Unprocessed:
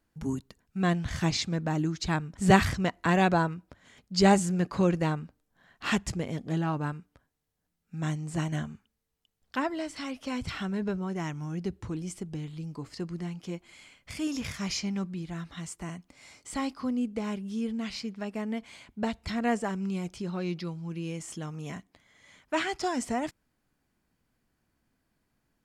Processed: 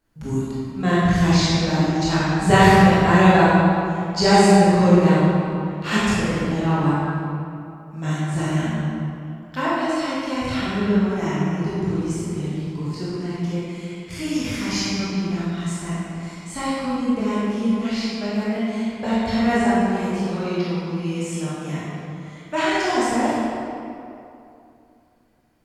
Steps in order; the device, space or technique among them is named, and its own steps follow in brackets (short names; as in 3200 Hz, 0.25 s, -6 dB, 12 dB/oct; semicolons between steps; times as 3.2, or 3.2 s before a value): tunnel (flutter echo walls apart 9.9 m, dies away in 0.28 s; reverb RT60 2.7 s, pre-delay 17 ms, DRR -9.5 dB)